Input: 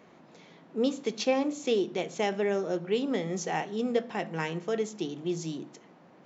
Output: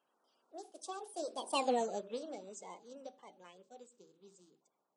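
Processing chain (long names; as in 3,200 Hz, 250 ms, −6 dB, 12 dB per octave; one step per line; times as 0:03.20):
spectral magnitudes quantised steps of 30 dB
source passing by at 0:02.11, 43 m/s, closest 7.7 metres
bass and treble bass −9 dB, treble +4 dB
speed change +26%
parametric band 2,000 Hz −10.5 dB 0.64 octaves
level that may rise only so fast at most 550 dB per second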